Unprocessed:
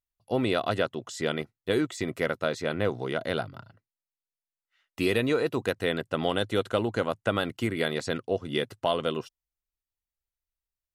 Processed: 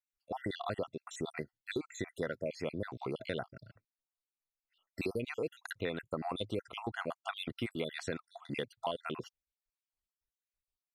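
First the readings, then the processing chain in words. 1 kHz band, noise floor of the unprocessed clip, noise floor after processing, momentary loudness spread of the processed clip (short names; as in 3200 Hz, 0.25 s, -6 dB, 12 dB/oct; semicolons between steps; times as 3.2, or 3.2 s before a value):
-9.0 dB, under -85 dBFS, under -85 dBFS, 5 LU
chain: random spectral dropouts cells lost 58%; high shelf 10000 Hz -6.5 dB; compressor 3:1, threshold -33 dBFS, peak gain reduction 9 dB; gain -1.5 dB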